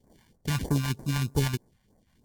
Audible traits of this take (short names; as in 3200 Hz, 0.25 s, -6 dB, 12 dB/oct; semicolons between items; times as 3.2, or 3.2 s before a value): aliases and images of a low sample rate 1300 Hz, jitter 0%; phasing stages 2, 3.2 Hz, lowest notch 360–3000 Hz; MP3